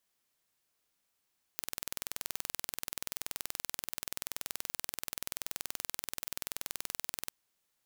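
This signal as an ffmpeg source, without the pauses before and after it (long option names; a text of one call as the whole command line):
ffmpeg -f lavfi -i "aevalsrc='0.376*eq(mod(n,2110),0)':duration=5.73:sample_rate=44100" out.wav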